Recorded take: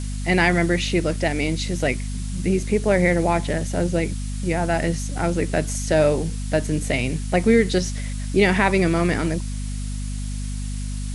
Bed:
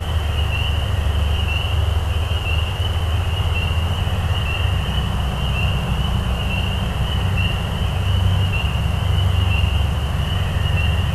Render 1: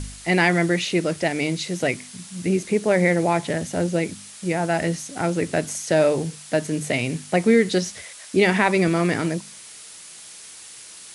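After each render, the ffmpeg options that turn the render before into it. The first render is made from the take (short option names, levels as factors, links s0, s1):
-af "bandreject=f=50:t=h:w=4,bandreject=f=100:t=h:w=4,bandreject=f=150:t=h:w=4,bandreject=f=200:t=h:w=4,bandreject=f=250:t=h:w=4"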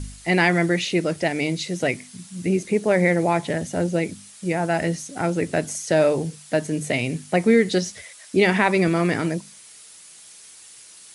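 -af "afftdn=nr=6:nf=-42"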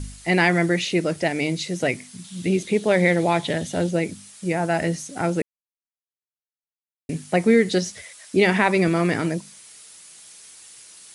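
-filter_complex "[0:a]asettb=1/sr,asplit=3[s0][s1][s2];[s0]atrim=end=2.244[s3];[s1]atrim=start=2.24:end=3.91,asetpts=PTS-STARTPTS,afade=t=in:d=0.004:c=qsin,afade=t=out:st=1.666:d=0.004:c=qsin,equalizer=f=3500:t=o:w=0.58:g=10.5[s4];[s2]atrim=start=3.906[s5];[s3][s4]acrossfade=d=0.004:c1=hsin:c2=qsin[s6];[s6][s5]acrossfade=d=0.004:c1=qsin:c2=hsin,asplit=3[s7][s8][s9];[s7]atrim=end=5.42,asetpts=PTS-STARTPTS,afade=t=out:st=5.416:d=0.004:c=hsin[s10];[s8]atrim=start=5.42:end=7.09,asetpts=PTS-STARTPTS,volume=0[s11];[s9]atrim=start=7.09,asetpts=PTS-STARTPTS,afade=t=in:d=0.004:c=hsin[s12];[s10][s11][s12]concat=n=3:v=0:a=1"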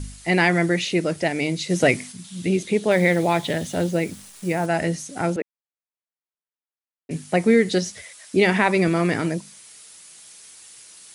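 -filter_complex "[0:a]asplit=3[s0][s1][s2];[s0]afade=t=out:st=1.69:d=0.02[s3];[s1]acontrast=48,afade=t=in:st=1.69:d=0.02,afade=t=out:st=2.11:d=0.02[s4];[s2]afade=t=in:st=2.11:d=0.02[s5];[s3][s4][s5]amix=inputs=3:normalize=0,asettb=1/sr,asplit=3[s6][s7][s8];[s6]atrim=end=2.914[s9];[s7]atrim=start=2.91:end=4.66,asetpts=PTS-STARTPTS,afade=t=in:d=0.004:c=qsin,afade=t=out:st=1.746:d=0.004:c=qsin,acrusher=bits=8:dc=4:mix=0:aa=0.000001[s10];[s8]atrim=start=4.656[s11];[s9][s10]acrossfade=d=0.004:c1=hsin:c2=qsin[s12];[s12][s11]acrossfade=d=0.004:c1=qsin:c2=hsin,asettb=1/sr,asplit=3[s13][s14][s15];[s13]atrim=end=5.364[s16];[s14]atrim=start=5.36:end=7.11,asetpts=PTS-STARTPTS,afade=t=in:d=0.004:c=qsin,afade=t=out:st=1.746:d=0.004:c=qsin,highpass=350,lowpass=2400[s17];[s15]atrim=start=7.106[s18];[s16][s17]acrossfade=d=0.004:c1=hsin:c2=qsin[s19];[s19][s18]acrossfade=d=0.004:c1=qsin:c2=hsin"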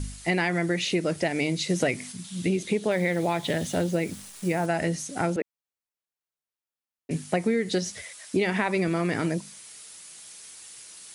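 -af "acompressor=threshold=0.0891:ratio=6"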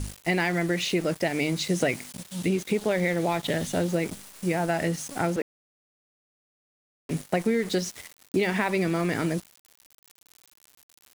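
-af "aeval=exprs='val(0)*gte(abs(val(0)),0.015)':c=same"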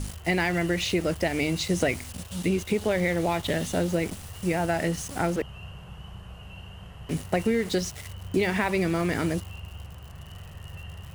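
-filter_complex "[1:a]volume=0.075[s0];[0:a][s0]amix=inputs=2:normalize=0"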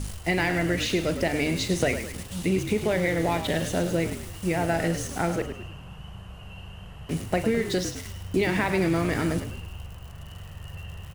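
-filter_complex "[0:a]asplit=2[s0][s1];[s1]adelay=42,volume=0.211[s2];[s0][s2]amix=inputs=2:normalize=0,asplit=6[s3][s4][s5][s6][s7][s8];[s4]adelay=104,afreqshift=-51,volume=0.335[s9];[s5]adelay=208,afreqshift=-102,volume=0.151[s10];[s6]adelay=312,afreqshift=-153,volume=0.0676[s11];[s7]adelay=416,afreqshift=-204,volume=0.0305[s12];[s8]adelay=520,afreqshift=-255,volume=0.0138[s13];[s3][s9][s10][s11][s12][s13]amix=inputs=6:normalize=0"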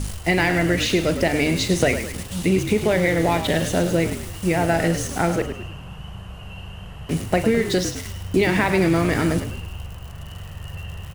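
-af "volume=1.88"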